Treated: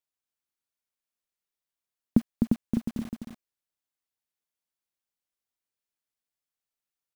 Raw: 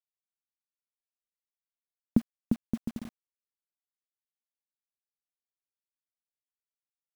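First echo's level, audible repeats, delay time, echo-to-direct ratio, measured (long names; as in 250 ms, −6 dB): −4.5 dB, 1, 255 ms, −4.5 dB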